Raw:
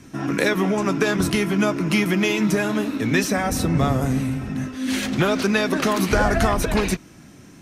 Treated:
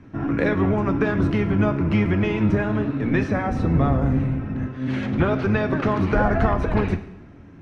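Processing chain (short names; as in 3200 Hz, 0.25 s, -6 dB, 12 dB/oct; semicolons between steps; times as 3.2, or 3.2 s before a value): octaver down 1 oct, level -2 dB; LPF 1800 Hz 12 dB/oct; two-slope reverb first 0.82 s, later 2.7 s, from -24 dB, DRR 9.5 dB; gain -1.5 dB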